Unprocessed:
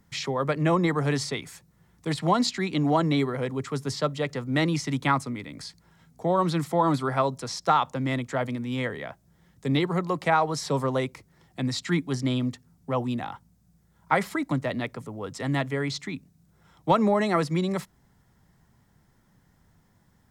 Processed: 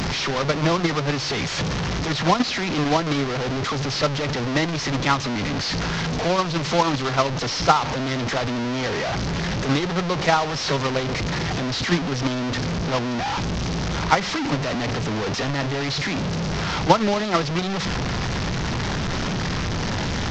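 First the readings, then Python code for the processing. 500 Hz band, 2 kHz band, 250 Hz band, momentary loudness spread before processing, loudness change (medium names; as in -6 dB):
+3.5 dB, +7.5 dB, +3.0 dB, 12 LU, +3.5 dB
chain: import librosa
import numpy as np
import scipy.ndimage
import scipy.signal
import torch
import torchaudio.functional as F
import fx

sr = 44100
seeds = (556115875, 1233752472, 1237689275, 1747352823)

y = fx.delta_mod(x, sr, bps=32000, step_db=-18.5)
y = fx.transient(y, sr, attack_db=10, sustain_db=-5)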